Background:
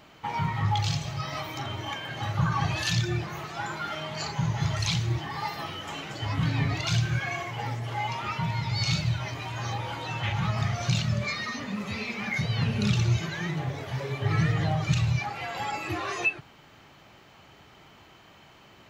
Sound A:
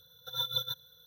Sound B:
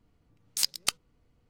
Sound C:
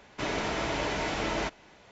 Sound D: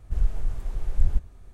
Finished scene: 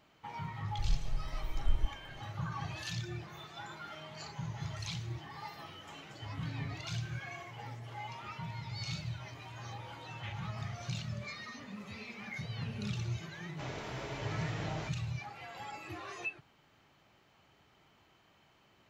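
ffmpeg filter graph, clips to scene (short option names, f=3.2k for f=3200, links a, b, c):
-filter_complex "[0:a]volume=-13dB[a];[1:a]bandpass=f=2.2k:t=q:w=5.4:csg=0[b];[4:a]atrim=end=1.53,asetpts=PTS-STARTPTS,volume=-9dB,afade=t=in:d=0.004:c=hsin,afade=t=out:st=1.526:d=0.004:c=hsin,adelay=680[c];[b]atrim=end=1.06,asetpts=PTS-STARTPTS,volume=-6.5dB,afade=t=in:d=0.004:c=hsin,afade=t=out:st=1.056:d=0.004:c=hsin,adelay=3010[d];[3:a]atrim=end=1.91,asetpts=PTS-STARTPTS,volume=-12.5dB,afade=t=in:d=0.004:c=hsin,afade=t=out:st=1.906:d=0.004:c=hsin,adelay=13400[e];[a][c][d][e]amix=inputs=4:normalize=0"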